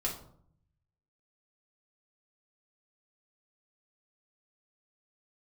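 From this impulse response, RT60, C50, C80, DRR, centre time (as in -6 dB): 0.60 s, 8.0 dB, 11.5 dB, -3.5 dB, 25 ms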